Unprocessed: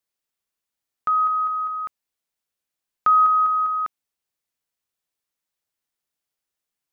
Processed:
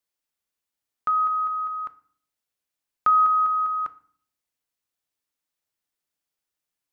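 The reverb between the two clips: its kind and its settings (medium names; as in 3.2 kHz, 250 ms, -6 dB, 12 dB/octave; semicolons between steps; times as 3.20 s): FDN reverb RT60 0.51 s, low-frequency decay 1.5×, high-frequency decay 0.9×, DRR 12 dB; trim -1.5 dB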